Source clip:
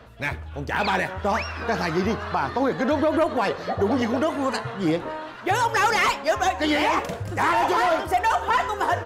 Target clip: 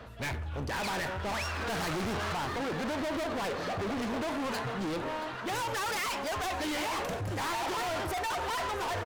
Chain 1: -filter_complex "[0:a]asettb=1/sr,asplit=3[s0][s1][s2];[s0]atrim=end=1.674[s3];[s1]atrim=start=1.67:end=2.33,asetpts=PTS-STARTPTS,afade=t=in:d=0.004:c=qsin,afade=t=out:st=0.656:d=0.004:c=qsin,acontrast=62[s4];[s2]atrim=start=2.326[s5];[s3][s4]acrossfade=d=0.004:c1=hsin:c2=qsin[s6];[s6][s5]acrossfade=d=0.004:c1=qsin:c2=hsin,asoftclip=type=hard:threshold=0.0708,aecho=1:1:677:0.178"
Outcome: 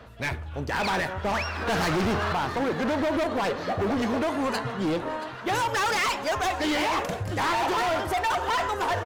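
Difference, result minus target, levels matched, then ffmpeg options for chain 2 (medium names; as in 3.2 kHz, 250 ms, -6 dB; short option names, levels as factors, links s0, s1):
hard clipper: distortion -5 dB
-filter_complex "[0:a]asettb=1/sr,asplit=3[s0][s1][s2];[s0]atrim=end=1.674[s3];[s1]atrim=start=1.67:end=2.33,asetpts=PTS-STARTPTS,afade=t=in:d=0.004:c=qsin,afade=t=out:st=0.656:d=0.004:c=qsin,acontrast=62[s4];[s2]atrim=start=2.326[s5];[s3][s4]acrossfade=d=0.004:c1=hsin:c2=qsin[s6];[s6][s5]acrossfade=d=0.004:c1=qsin:c2=hsin,asoftclip=type=hard:threshold=0.0251,aecho=1:1:677:0.178"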